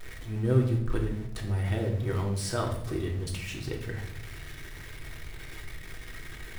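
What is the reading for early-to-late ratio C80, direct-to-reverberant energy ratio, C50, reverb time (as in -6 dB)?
10.0 dB, 0.0 dB, 7.0 dB, 0.75 s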